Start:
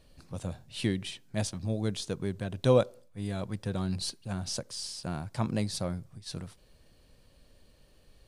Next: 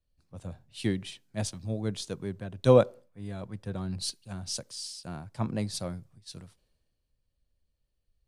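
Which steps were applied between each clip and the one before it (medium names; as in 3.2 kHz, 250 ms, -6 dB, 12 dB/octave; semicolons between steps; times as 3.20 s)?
three bands expanded up and down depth 70%; trim -2.5 dB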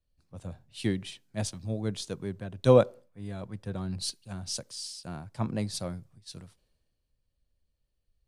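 no audible change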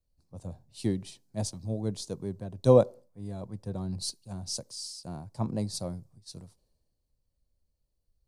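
high-order bell 2.1 kHz -10.5 dB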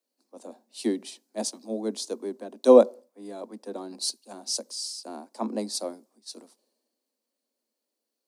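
steep high-pass 220 Hz 96 dB/octave; trim +5.5 dB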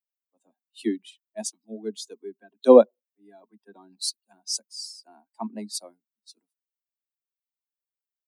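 expander on every frequency bin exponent 2; trim +3.5 dB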